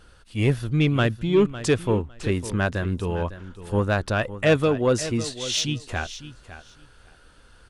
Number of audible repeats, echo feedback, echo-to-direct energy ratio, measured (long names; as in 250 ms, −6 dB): 2, 17%, −14.0 dB